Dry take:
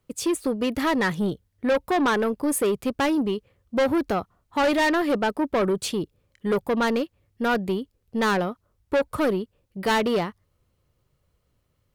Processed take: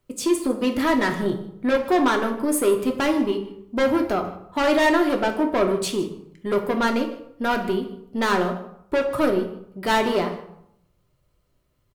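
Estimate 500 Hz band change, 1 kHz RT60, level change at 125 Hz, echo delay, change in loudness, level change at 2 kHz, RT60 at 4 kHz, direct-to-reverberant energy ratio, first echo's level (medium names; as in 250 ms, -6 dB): +2.0 dB, 0.75 s, -0.5 dB, 154 ms, +2.0 dB, +1.5 dB, 0.50 s, 2.5 dB, -18.0 dB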